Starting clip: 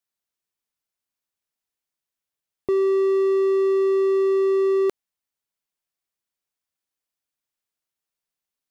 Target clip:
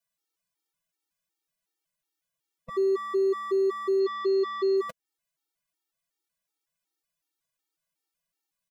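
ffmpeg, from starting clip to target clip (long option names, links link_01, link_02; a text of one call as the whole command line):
ffmpeg -i in.wav -filter_complex "[0:a]aecho=1:1:6.1:0.94,alimiter=limit=-23dB:level=0:latency=1:release=219,asplit=3[link_01][link_02][link_03];[link_01]afade=type=out:start_time=3.99:duration=0.02[link_04];[link_02]lowpass=frequency=4200:width_type=q:width=3.2,afade=type=in:start_time=3.99:duration=0.02,afade=type=out:start_time=4.76:duration=0.02[link_05];[link_03]afade=type=in:start_time=4.76:duration=0.02[link_06];[link_04][link_05][link_06]amix=inputs=3:normalize=0,afftfilt=real='re*gt(sin(2*PI*2.7*pts/sr)*(1-2*mod(floor(b*sr/1024/240),2)),0)':imag='im*gt(sin(2*PI*2.7*pts/sr)*(1-2*mod(floor(b*sr/1024/240),2)),0)':win_size=1024:overlap=0.75,volume=2dB" out.wav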